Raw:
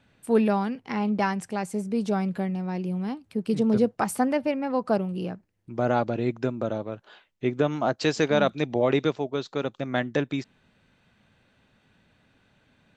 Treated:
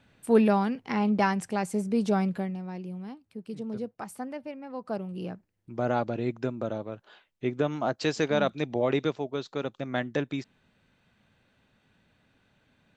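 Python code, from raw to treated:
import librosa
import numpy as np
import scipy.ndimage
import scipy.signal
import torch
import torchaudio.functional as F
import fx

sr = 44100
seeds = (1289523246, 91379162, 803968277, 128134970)

y = fx.gain(x, sr, db=fx.line((2.23, 0.5), (2.6, -6.5), (3.55, -13.0), (4.67, -13.0), (5.3, -3.5)))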